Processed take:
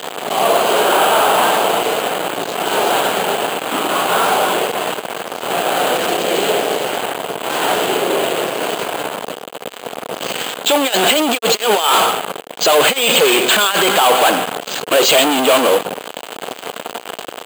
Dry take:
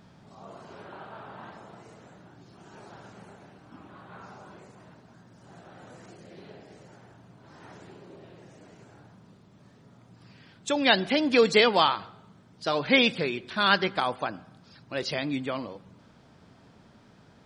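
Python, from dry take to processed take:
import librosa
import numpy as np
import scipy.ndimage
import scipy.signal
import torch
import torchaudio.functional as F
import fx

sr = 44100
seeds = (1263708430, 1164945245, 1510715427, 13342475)

y = fx.over_compress(x, sr, threshold_db=-30.0, ratio=-0.5)
y = fx.fuzz(y, sr, gain_db=47.0, gate_db=-46.0)
y = fx.cabinet(y, sr, low_hz=400.0, low_slope=12, high_hz=5000.0, hz=(460.0, 720.0, 1900.0, 3000.0), db=(5, 4, -4, 7))
y = np.repeat(scipy.signal.resample_poly(y, 1, 4), 4)[:len(y)]
y = y * 10.0 ** (3.0 / 20.0)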